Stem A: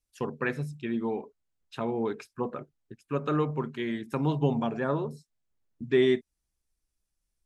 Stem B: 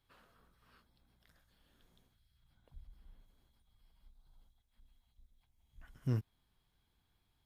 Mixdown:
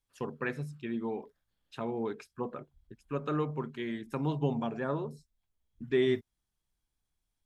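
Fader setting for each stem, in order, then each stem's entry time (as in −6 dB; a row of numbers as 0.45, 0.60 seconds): −4.5, −11.5 decibels; 0.00, 0.00 seconds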